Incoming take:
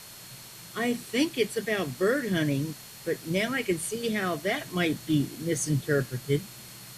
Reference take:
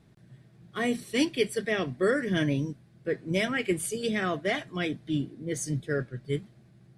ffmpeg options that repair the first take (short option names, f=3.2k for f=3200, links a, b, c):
-af "bandreject=f=4.3k:w=30,afwtdn=0.0056,asetnsamples=n=441:p=0,asendcmd='4.61 volume volume -4dB',volume=0dB"